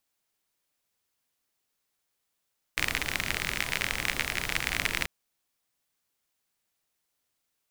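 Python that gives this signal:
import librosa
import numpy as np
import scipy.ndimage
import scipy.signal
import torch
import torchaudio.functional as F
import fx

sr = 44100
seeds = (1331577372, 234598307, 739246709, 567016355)

y = fx.rain(sr, seeds[0], length_s=2.29, drops_per_s=44.0, hz=2100.0, bed_db=-5.0)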